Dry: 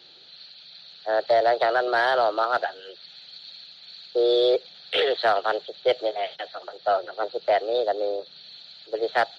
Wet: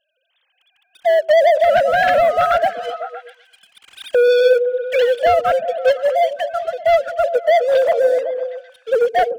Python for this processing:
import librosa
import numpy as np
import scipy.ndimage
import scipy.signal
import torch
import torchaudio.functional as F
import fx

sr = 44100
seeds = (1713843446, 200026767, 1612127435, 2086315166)

p1 = fx.sine_speech(x, sr)
p2 = fx.recorder_agc(p1, sr, target_db=-16.5, rise_db_per_s=12.0, max_gain_db=30)
p3 = fx.leveller(p2, sr, passes=3)
y = p3 + fx.echo_stepped(p3, sr, ms=127, hz=250.0, octaves=0.7, feedback_pct=70, wet_db=-5.0, dry=0)